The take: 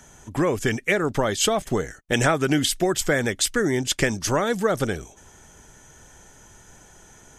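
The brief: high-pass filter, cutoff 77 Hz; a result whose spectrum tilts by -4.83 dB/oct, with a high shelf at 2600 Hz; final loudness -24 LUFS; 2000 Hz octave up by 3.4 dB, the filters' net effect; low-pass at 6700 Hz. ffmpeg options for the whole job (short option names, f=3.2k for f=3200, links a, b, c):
-af "highpass=77,lowpass=6.7k,equalizer=f=2k:t=o:g=7,highshelf=f=2.6k:g=-7,volume=-1dB"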